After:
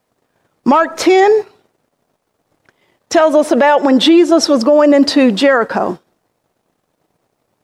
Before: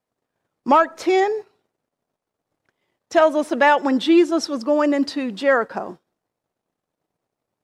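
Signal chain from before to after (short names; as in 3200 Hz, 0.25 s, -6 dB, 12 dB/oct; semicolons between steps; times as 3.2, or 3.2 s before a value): 3.33–5.38 bell 600 Hz +6 dB 0.88 oct; compressor, threshold -17 dBFS, peak gain reduction 9.5 dB; maximiser +16 dB; gain -1 dB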